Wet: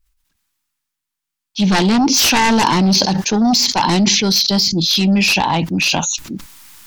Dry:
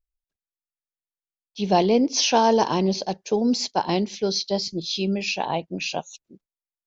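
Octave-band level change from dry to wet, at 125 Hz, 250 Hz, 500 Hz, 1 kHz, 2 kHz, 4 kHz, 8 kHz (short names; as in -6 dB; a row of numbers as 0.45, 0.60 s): +12.0 dB, +9.5 dB, -0.5 dB, +6.5 dB, +14.0 dB, +12.5 dB, n/a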